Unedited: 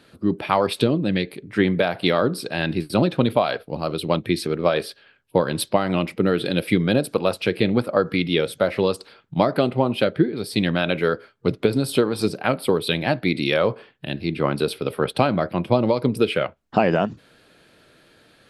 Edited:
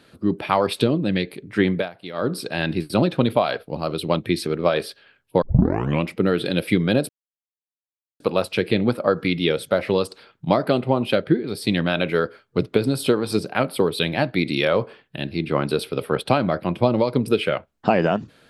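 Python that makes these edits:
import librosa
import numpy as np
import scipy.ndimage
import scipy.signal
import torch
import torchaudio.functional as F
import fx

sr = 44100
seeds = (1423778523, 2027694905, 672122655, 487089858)

y = fx.edit(x, sr, fx.fade_down_up(start_s=1.66, length_s=0.71, db=-15.5, fade_s=0.24, curve='qsin'),
    fx.tape_start(start_s=5.42, length_s=0.62),
    fx.insert_silence(at_s=7.09, length_s=1.11), tone=tone)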